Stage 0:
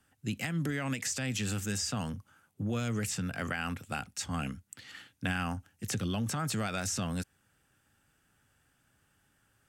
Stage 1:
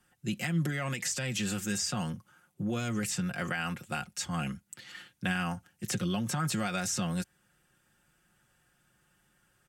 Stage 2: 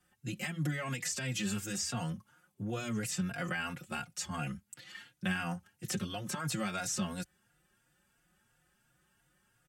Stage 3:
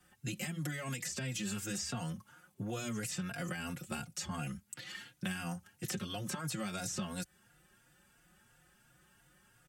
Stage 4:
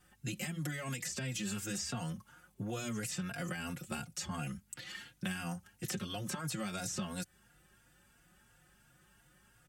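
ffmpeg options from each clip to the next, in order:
-af "aecho=1:1:5.6:0.64"
-filter_complex "[0:a]asplit=2[s0][s1];[s1]adelay=3.6,afreqshift=2.9[s2];[s0][s2]amix=inputs=2:normalize=1"
-filter_complex "[0:a]acrossover=split=520|4600[s0][s1][s2];[s0]acompressor=threshold=0.00562:ratio=4[s3];[s1]acompressor=threshold=0.00282:ratio=4[s4];[s2]acompressor=threshold=0.00355:ratio=4[s5];[s3][s4][s5]amix=inputs=3:normalize=0,volume=2"
-af "aeval=exprs='val(0)+0.000224*(sin(2*PI*50*n/s)+sin(2*PI*2*50*n/s)/2+sin(2*PI*3*50*n/s)/3+sin(2*PI*4*50*n/s)/4+sin(2*PI*5*50*n/s)/5)':c=same"

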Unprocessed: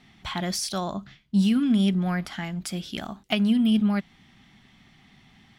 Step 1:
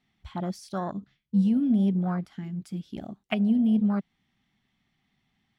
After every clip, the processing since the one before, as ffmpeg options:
-af "afwtdn=0.0355,volume=0.841"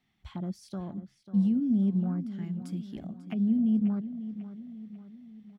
-filter_complex "[0:a]acrossover=split=360[s0][s1];[s1]acompressor=threshold=0.00501:ratio=6[s2];[s0][s2]amix=inputs=2:normalize=0,asplit=2[s3][s4];[s4]adelay=543,lowpass=f=4800:p=1,volume=0.237,asplit=2[s5][s6];[s6]adelay=543,lowpass=f=4800:p=1,volume=0.51,asplit=2[s7][s8];[s8]adelay=543,lowpass=f=4800:p=1,volume=0.51,asplit=2[s9][s10];[s10]adelay=543,lowpass=f=4800:p=1,volume=0.51,asplit=2[s11][s12];[s12]adelay=543,lowpass=f=4800:p=1,volume=0.51[s13];[s3][s5][s7][s9][s11][s13]amix=inputs=6:normalize=0,volume=0.794"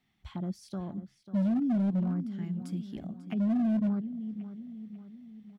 -af "asoftclip=type=hard:threshold=0.0596"

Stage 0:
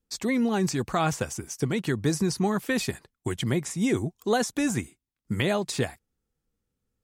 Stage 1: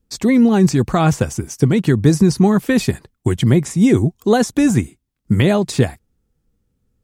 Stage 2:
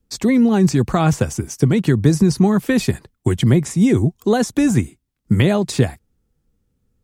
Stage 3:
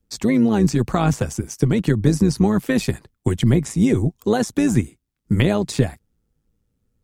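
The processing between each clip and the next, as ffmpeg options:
-af "lowshelf=f=420:g=10,volume=1.88"
-filter_complex "[0:a]acrossover=split=160[s0][s1];[s1]acompressor=threshold=0.2:ratio=2[s2];[s0][s2]amix=inputs=2:normalize=0"
-af "tremolo=f=110:d=0.571"

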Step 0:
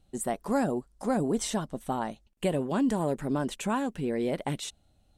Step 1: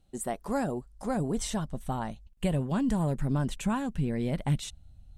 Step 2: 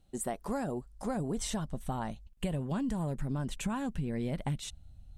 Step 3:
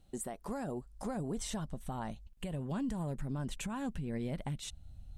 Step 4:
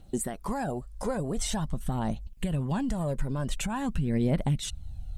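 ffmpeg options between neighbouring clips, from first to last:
-af "asubboost=boost=9.5:cutoff=130,volume=0.794"
-af "acompressor=threshold=0.0316:ratio=6"
-af "alimiter=level_in=2.37:limit=0.0631:level=0:latency=1:release=449,volume=0.422,volume=1.26"
-af "aphaser=in_gain=1:out_gain=1:delay=2.1:decay=0.45:speed=0.46:type=triangular,volume=2.37"

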